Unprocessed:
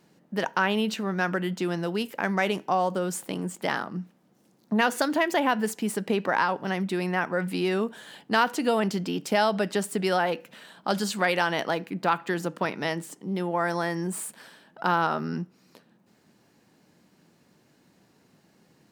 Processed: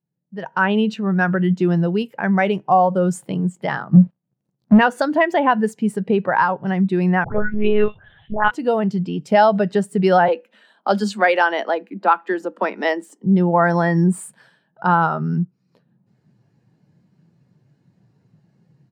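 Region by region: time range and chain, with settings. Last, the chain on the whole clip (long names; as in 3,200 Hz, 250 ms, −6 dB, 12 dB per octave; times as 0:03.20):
0:03.93–0:04.79: treble cut that deepens with the level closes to 720 Hz, closed at −24.5 dBFS + leveller curve on the samples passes 3
0:07.24–0:08.51: all-pass dispersion highs, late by 141 ms, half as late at 1,500 Hz + one-pitch LPC vocoder at 8 kHz 210 Hz
0:10.28–0:13.24: Butterworth high-pass 200 Hz 96 dB per octave + noise gate with hold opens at −41 dBFS, closes at −46 dBFS
whole clip: graphic EQ with 10 bands 125 Hz +11 dB, 250 Hz −5 dB, 16,000 Hz −4 dB; automatic gain control gain up to 16.5 dB; every bin expanded away from the loudest bin 1.5 to 1; level −1 dB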